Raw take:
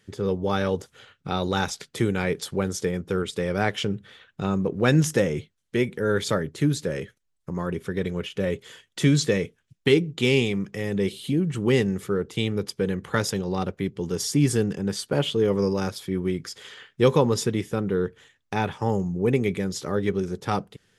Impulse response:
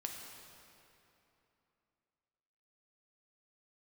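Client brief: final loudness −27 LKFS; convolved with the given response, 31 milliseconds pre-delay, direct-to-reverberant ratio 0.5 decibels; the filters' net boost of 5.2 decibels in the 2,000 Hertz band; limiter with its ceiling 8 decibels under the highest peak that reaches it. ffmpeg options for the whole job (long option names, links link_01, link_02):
-filter_complex "[0:a]equalizer=frequency=2000:width_type=o:gain=6.5,alimiter=limit=-11.5dB:level=0:latency=1,asplit=2[link_01][link_02];[1:a]atrim=start_sample=2205,adelay=31[link_03];[link_02][link_03]afir=irnorm=-1:irlink=0,volume=0.5dB[link_04];[link_01][link_04]amix=inputs=2:normalize=0,volume=-4dB"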